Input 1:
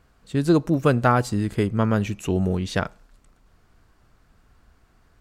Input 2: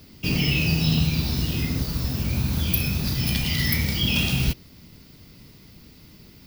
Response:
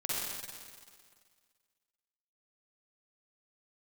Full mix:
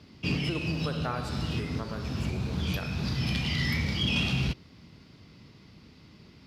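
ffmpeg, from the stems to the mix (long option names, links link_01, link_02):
-filter_complex "[0:a]lowshelf=frequency=320:gain=-7.5,volume=-16.5dB,asplit=3[link_01][link_02][link_03];[link_02]volume=-6.5dB[link_04];[1:a]lowpass=4600,equalizer=frequency=1100:width_type=o:width=0.72:gain=3,asoftclip=type=tanh:threshold=-14dB,volume=-3dB[link_05];[link_03]apad=whole_len=284955[link_06];[link_05][link_06]sidechaincompress=threshold=-41dB:ratio=8:attack=11:release=336[link_07];[2:a]atrim=start_sample=2205[link_08];[link_04][link_08]afir=irnorm=-1:irlink=0[link_09];[link_01][link_07][link_09]amix=inputs=3:normalize=0,highpass=67"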